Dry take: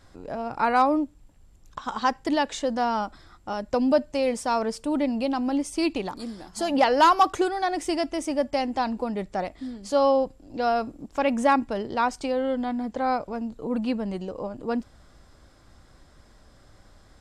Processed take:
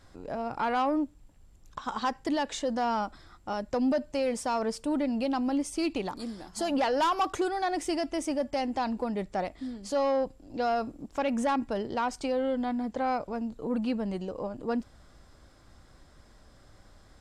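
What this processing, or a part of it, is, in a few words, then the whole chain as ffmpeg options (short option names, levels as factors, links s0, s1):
soft clipper into limiter: -af "asoftclip=type=tanh:threshold=0.178,alimiter=limit=0.112:level=0:latency=1:release=84,volume=0.794"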